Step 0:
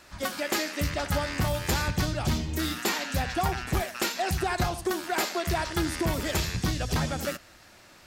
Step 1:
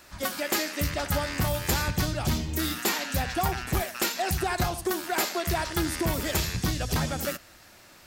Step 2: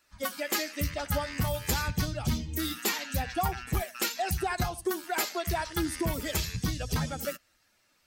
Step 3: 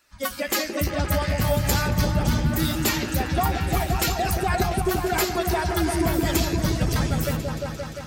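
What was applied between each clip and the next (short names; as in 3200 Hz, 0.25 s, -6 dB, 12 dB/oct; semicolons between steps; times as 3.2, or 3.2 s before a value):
high shelf 12000 Hz +11.5 dB
per-bin expansion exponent 1.5
repeats that get brighter 0.174 s, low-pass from 400 Hz, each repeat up 1 oct, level 0 dB; gain +5 dB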